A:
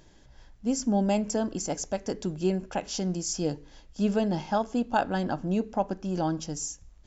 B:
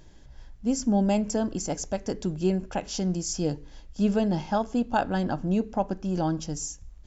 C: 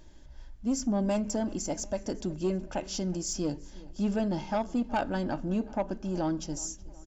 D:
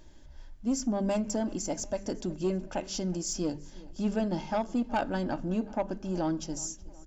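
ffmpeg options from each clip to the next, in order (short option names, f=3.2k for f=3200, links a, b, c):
-af "lowshelf=f=140:g=7.5"
-filter_complex "[0:a]aecho=1:1:3.3:0.33,asoftclip=type=tanh:threshold=-18dB,asplit=2[a][b];[b]adelay=370,lowpass=f=4.8k:p=1,volume=-20.5dB,asplit=2[c][d];[d]adelay=370,lowpass=f=4.8k:p=1,volume=0.54,asplit=2[e][f];[f]adelay=370,lowpass=f=4.8k:p=1,volume=0.54,asplit=2[g][h];[h]adelay=370,lowpass=f=4.8k:p=1,volume=0.54[i];[a][c][e][g][i]amix=inputs=5:normalize=0,volume=-2.5dB"
-af "bandreject=f=50:t=h:w=6,bandreject=f=100:t=h:w=6,bandreject=f=150:t=h:w=6,bandreject=f=200:t=h:w=6"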